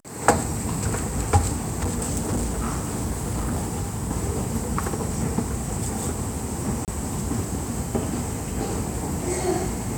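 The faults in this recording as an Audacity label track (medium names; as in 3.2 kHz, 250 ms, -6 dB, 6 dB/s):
1.680000	4.110000	clipped -21 dBFS
6.850000	6.880000	dropout 28 ms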